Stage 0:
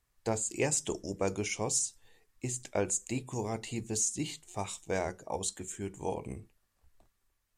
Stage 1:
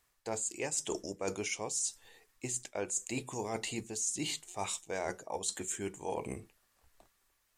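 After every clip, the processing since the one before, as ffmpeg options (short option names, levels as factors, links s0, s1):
-af "lowshelf=f=230:g=-12,areverse,acompressor=threshold=0.01:ratio=6,areverse,volume=2.24"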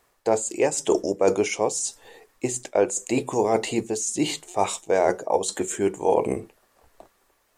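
-af "equalizer=f=500:t=o:w=2.6:g=12,volume=2"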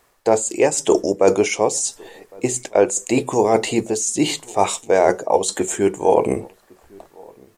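-filter_complex "[0:a]asplit=2[s0][s1];[s1]adelay=1108,volume=0.0501,highshelf=f=4000:g=-24.9[s2];[s0][s2]amix=inputs=2:normalize=0,volume=1.88"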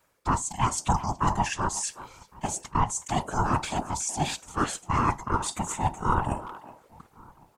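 -filter_complex "[0:a]aeval=exprs='val(0)*sin(2*PI*490*n/s)':c=same,afftfilt=real='hypot(re,im)*cos(2*PI*random(0))':imag='hypot(re,im)*sin(2*PI*random(1))':win_size=512:overlap=0.75,asplit=2[s0][s1];[s1]adelay=370,highpass=300,lowpass=3400,asoftclip=type=hard:threshold=0.112,volume=0.2[s2];[s0][s2]amix=inputs=2:normalize=0"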